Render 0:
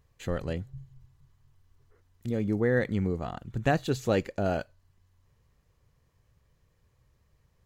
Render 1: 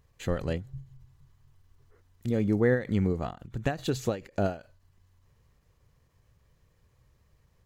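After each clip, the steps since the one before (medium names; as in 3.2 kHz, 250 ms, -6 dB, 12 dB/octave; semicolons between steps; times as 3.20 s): endings held to a fixed fall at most 170 dB/s; trim +2.5 dB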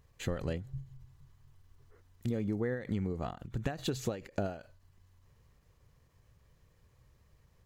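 compression 12:1, threshold -29 dBFS, peak gain reduction 11.5 dB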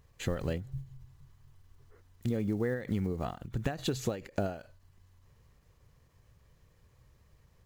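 block-companded coder 7-bit; trim +2 dB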